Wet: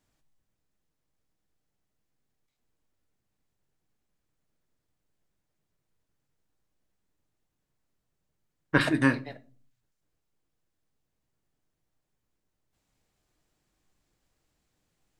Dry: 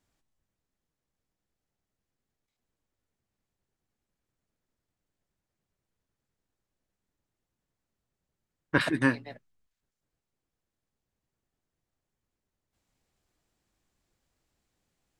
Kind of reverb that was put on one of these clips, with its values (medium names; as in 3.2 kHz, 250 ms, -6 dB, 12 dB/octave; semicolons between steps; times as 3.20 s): simulated room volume 260 m³, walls furnished, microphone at 0.48 m; trim +1.5 dB